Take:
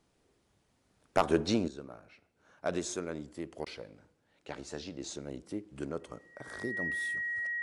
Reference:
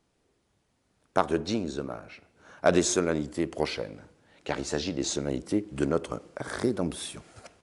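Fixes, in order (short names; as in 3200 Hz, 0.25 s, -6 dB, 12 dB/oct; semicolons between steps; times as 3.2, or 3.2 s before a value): clip repair -14 dBFS; notch 1900 Hz, Q 30; interpolate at 3.65, 12 ms; gain correction +11.5 dB, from 1.68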